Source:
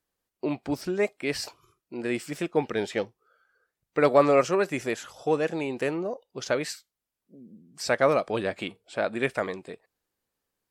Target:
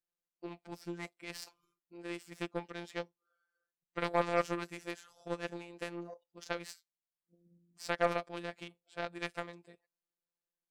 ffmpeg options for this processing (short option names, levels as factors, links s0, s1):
-af "afftfilt=real='hypot(re,im)*cos(PI*b)':imag='0':win_size=1024:overlap=0.75,aeval=exprs='0.376*(cos(1*acos(clip(val(0)/0.376,-1,1)))-cos(1*PI/2))+0.0168*(cos(3*acos(clip(val(0)/0.376,-1,1)))-cos(3*PI/2))+0.0266*(cos(7*acos(clip(val(0)/0.376,-1,1)))-cos(7*PI/2))':c=same,volume=0.631"